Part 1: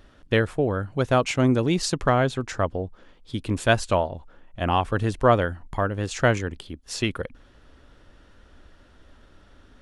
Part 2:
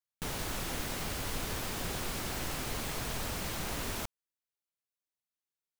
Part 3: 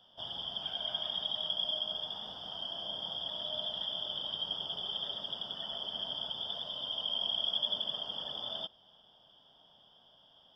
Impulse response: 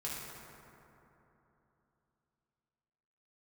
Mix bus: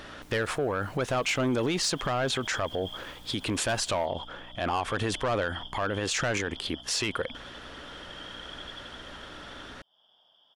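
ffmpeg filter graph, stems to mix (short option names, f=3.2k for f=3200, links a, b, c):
-filter_complex "[0:a]aeval=exprs='val(0)+0.00178*(sin(2*PI*60*n/s)+sin(2*PI*2*60*n/s)/2+sin(2*PI*3*60*n/s)/3+sin(2*PI*4*60*n/s)/4+sin(2*PI*5*60*n/s)/5)':c=same,volume=2.5dB,asplit=2[a][b];[1:a]volume=-18.5dB[c];[2:a]acompressor=mode=upward:threshold=-40dB:ratio=2.5,adelay=1050,volume=-16dB[d];[b]apad=whole_len=511660[e];[d][e]sidechaingate=range=-9dB:threshold=-37dB:ratio=16:detection=peak[f];[a][f]amix=inputs=2:normalize=0,asplit=2[g][h];[h]highpass=f=720:p=1,volume=19dB,asoftclip=type=tanh:threshold=-2dB[i];[g][i]amix=inputs=2:normalize=0,lowpass=f=6.6k:p=1,volume=-6dB,acompressor=threshold=-17dB:ratio=6,volume=0dB[j];[c][j]amix=inputs=2:normalize=0,alimiter=limit=-20.5dB:level=0:latency=1:release=58"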